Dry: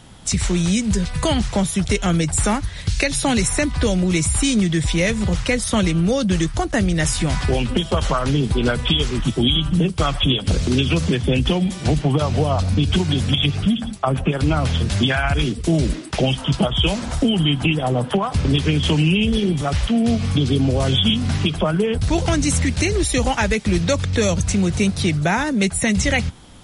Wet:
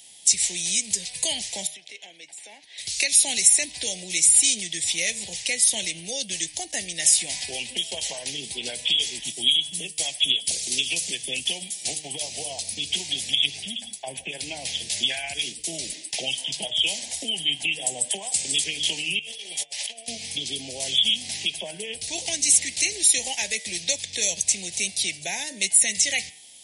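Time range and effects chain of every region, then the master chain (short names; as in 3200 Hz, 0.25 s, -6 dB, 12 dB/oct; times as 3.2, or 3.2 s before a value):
1.67–2.78 compressor, threshold -26 dBFS + three-band isolator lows -22 dB, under 250 Hz, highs -19 dB, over 3900 Hz
9.32–12.83 HPF 41 Hz + high shelf 7800 Hz +12 dB + upward expander, over -28 dBFS
17.81–18.64 HPF 86 Hz + bell 8000 Hz +15 dB 0.65 oct
19.19–20.08 resonant low shelf 390 Hz -14 dB, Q 1.5 + negative-ratio compressor -31 dBFS, ratio -0.5
whole clip: Chebyshev band-stop 760–2100 Hz, order 2; differentiator; de-hum 152.8 Hz, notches 23; gain +7 dB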